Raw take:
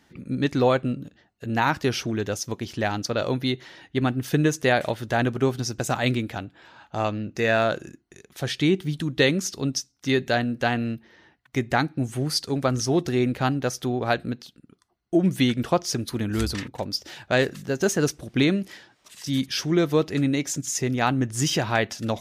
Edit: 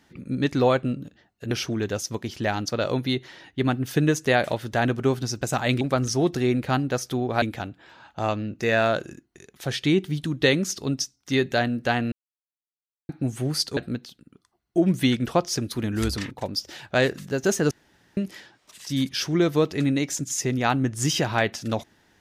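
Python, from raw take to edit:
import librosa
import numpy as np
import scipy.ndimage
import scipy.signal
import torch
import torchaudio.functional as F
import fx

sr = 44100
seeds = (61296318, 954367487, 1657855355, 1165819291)

y = fx.edit(x, sr, fx.cut(start_s=1.51, length_s=0.37),
    fx.silence(start_s=10.88, length_s=0.97),
    fx.move(start_s=12.53, length_s=1.61, to_s=6.18),
    fx.room_tone_fill(start_s=18.08, length_s=0.46), tone=tone)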